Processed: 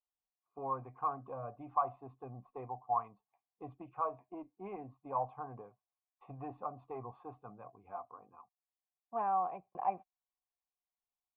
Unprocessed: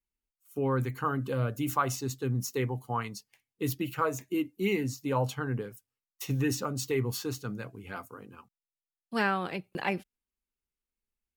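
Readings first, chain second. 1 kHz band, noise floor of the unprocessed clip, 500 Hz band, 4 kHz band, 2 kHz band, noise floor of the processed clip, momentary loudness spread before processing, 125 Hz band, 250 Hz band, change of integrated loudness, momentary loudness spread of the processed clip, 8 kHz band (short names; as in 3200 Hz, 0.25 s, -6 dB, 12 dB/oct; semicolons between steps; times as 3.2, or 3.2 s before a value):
-1.0 dB, under -85 dBFS, -10.5 dB, under -35 dB, -25.0 dB, under -85 dBFS, 12 LU, -20.0 dB, -18.5 dB, -8.0 dB, 17 LU, under -40 dB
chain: tube stage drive 20 dB, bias 0.2; vocal tract filter a; gain +9 dB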